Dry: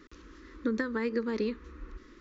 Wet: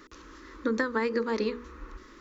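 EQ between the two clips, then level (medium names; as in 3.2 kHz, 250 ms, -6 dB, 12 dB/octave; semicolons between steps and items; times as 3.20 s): peaking EQ 840 Hz +9.5 dB 1.6 oct; treble shelf 4.3 kHz +10.5 dB; hum notches 60/120/180/240/300/360/420/480 Hz; 0.0 dB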